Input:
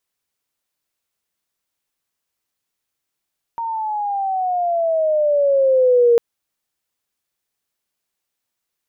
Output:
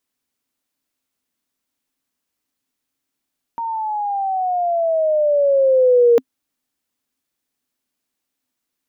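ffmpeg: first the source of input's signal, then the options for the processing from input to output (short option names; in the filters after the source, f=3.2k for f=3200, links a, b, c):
-f lavfi -i "aevalsrc='pow(10,(-9+12.5*(t/2.6-1))/20)*sin(2*PI*930*2.6/(-12*log(2)/12)*(exp(-12*log(2)/12*t/2.6)-1))':d=2.6:s=44100"
-af "equalizer=f=260:t=o:w=0.42:g=14"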